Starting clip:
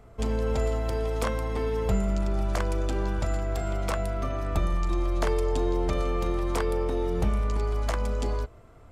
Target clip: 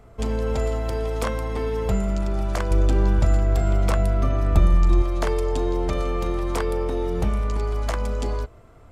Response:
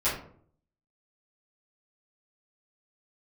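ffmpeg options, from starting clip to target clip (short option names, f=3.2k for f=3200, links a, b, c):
-filter_complex "[0:a]asettb=1/sr,asplit=3[a][b][c];[a]atrim=end=2.714[d];[b]atrim=start=2.71:end=5.02,asetpts=PTS-STARTPTS,afade=t=in:d=0.004:c=qsin,afade=t=out:st=2.306:d=0.004:c=qsin,lowshelf=f=300:g=8[e];[c]atrim=start=5.016[f];[d][e]acrossfade=d=0.004:c1=hsin:c2=qsin[g];[g][f]acrossfade=d=0.004:c1=qsin:c2=hsin,volume=2.5dB"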